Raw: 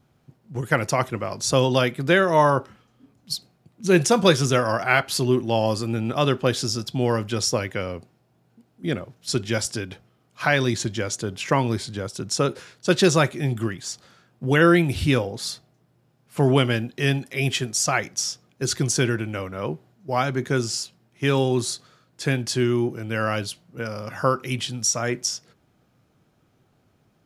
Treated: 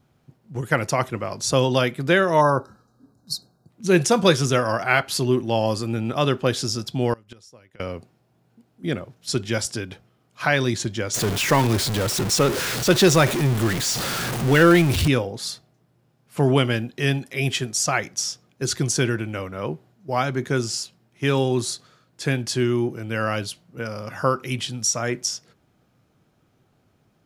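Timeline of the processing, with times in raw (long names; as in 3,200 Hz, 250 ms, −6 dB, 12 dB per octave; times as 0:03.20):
0:02.41–0:03.70: gain on a spectral selection 1,700–3,700 Hz −23 dB
0:07.13–0:07.80: gate with flip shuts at −18 dBFS, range −26 dB
0:11.14–0:15.08: converter with a step at zero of −20.5 dBFS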